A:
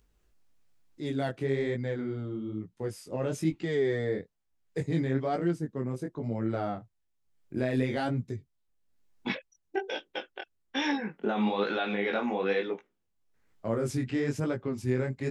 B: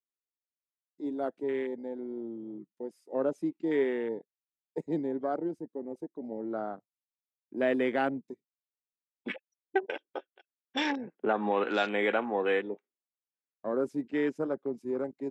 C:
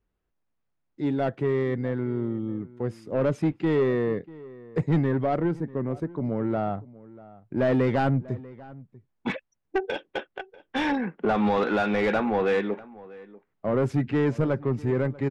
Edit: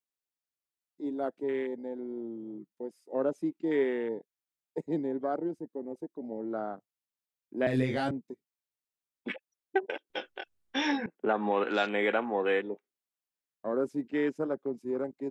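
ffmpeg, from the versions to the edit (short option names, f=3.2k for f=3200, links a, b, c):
-filter_complex "[0:a]asplit=2[a][b];[1:a]asplit=3[c][d][e];[c]atrim=end=7.672[f];[a]atrim=start=7.668:end=8.112[g];[d]atrim=start=8.108:end=10.102[h];[b]atrim=start=10.098:end=11.062[i];[e]atrim=start=11.058[j];[f][g]acrossfade=d=0.004:c1=hsin:c2=hsin[k];[k][h]acrossfade=d=0.004:c1=hsin:c2=hsin[l];[l][i]acrossfade=d=0.004:c1=hsin:c2=hsin[m];[m][j]acrossfade=d=0.004:c1=hsin:c2=hsin"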